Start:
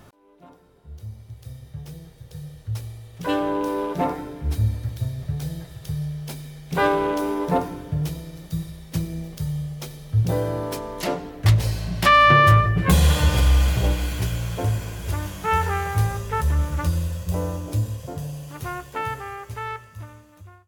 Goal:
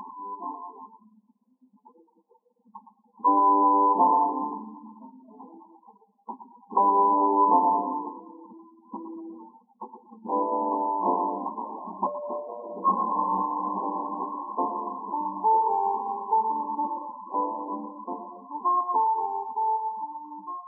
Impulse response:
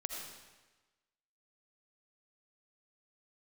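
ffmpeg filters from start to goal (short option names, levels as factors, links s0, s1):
-filter_complex "[0:a]acompressor=mode=upward:threshold=0.0316:ratio=2.5,lowshelf=f=770:t=q:w=3:g=-7.5,asoftclip=type=hard:threshold=0.158,asplit=2[s0][s1];[1:a]atrim=start_sample=2205,adelay=116[s2];[s1][s2]afir=irnorm=-1:irlink=0,volume=0.562[s3];[s0][s3]amix=inputs=2:normalize=0,asoftclip=type=tanh:threshold=0.251,acompressor=threshold=0.0631:ratio=5,aeval=exprs='val(0)+0.00224*(sin(2*PI*50*n/s)+sin(2*PI*2*50*n/s)/2+sin(2*PI*3*50*n/s)/3+sin(2*PI*4*50*n/s)/4+sin(2*PI*5*50*n/s)/5)':c=same,afftfilt=real='re*between(b*sr/4096,190,1100)':imag='im*between(b*sr/4096,190,1100)':win_size=4096:overlap=0.75,afftdn=nr=32:nf=-42,volume=2.66"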